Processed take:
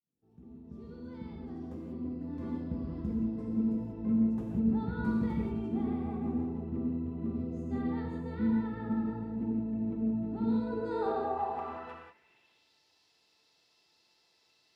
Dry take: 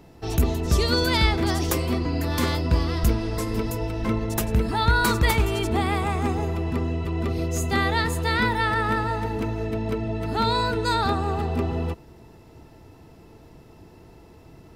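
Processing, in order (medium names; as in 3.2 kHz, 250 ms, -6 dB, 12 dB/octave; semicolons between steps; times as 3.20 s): fade-in on the opening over 3.69 s; band-pass sweep 220 Hz -> 4.4 kHz, 10.42–12.68 s; gated-style reverb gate 210 ms flat, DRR -2.5 dB; trim -5 dB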